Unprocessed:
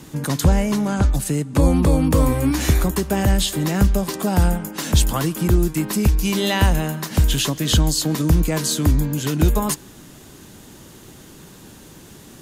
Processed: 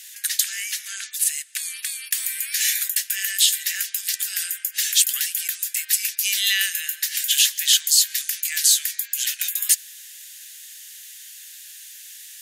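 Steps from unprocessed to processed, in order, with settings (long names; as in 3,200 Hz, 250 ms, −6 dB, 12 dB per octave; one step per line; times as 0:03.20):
Chebyshev high-pass filter 1,700 Hz, order 5
spectral tilt +2.5 dB per octave
level +1 dB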